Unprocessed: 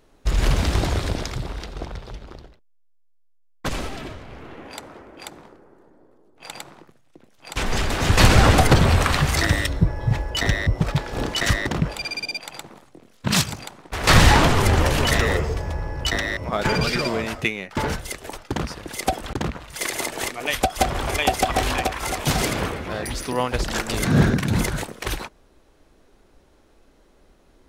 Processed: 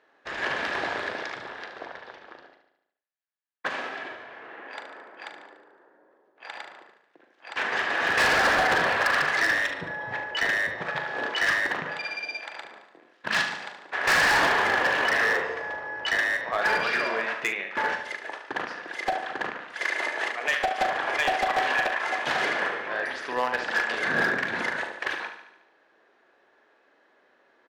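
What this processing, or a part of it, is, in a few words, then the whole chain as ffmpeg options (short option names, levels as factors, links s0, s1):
megaphone: -filter_complex "[0:a]asettb=1/sr,asplit=3[s0][s1][s2];[s0]atrim=end=14.984[s3];[s1]atrim=start=14.98:end=15.6,asetpts=PTS-STARTPTS,afade=t=in:d=0.004:c=qsin,afade=t=out:st=0.616:d=0.004:c=qsin,acrossover=split=2800[s4][s5];[s5]acompressor=threshold=0.0282:ratio=4:attack=1:release=60[s6];[s4][s6]amix=inputs=2:normalize=0[s7];[s2]atrim=start=15.596[s8];[s3][s7]acrossfade=d=0.004:c1=hsin:c2=qsin[s9];[s9][s8]acrossfade=d=0.004:c1=qsin:c2=hsin,highpass=540,lowpass=2900,equalizer=f=1700:t=o:w=0.21:g=12,aecho=1:1:73|146|219|292|365|438|511:0.335|0.188|0.105|0.0588|0.0329|0.0184|0.0103,asoftclip=type=hard:threshold=0.141,asplit=2[s10][s11];[s11]adelay=40,volume=0.355[s12];[s10][s12]amix=inputs=2:normalize=0,volume=0.841"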